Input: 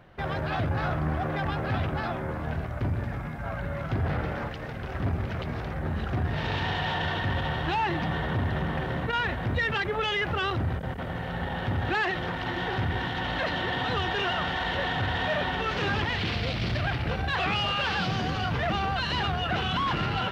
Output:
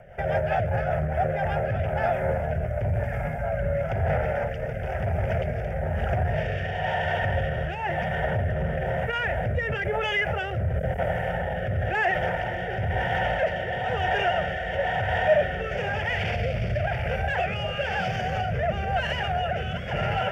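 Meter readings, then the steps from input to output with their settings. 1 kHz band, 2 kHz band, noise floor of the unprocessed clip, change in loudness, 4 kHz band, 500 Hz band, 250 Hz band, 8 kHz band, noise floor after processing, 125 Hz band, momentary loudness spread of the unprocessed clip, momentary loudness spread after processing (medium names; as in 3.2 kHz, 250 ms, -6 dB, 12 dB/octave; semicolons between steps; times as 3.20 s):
+2.0 dB, +1.5 dB, -34 dBFS, +2.0 dB, -5.0 dB, +7.5 dB, -3.0 dB, no reading, -31 dBFS, +2.0 dB, 6 LU, 4 LU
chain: peak limiter -23.5 dBFS, peak gain reduction 6.5 dB; static phaser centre 1.1 kHz, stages 6; rotary cabinet horn 5 Hz, later 1 Hz, at 0.90 s; peaking EQ 620 Hz +9 dB 0.61 oct; trim +8 dB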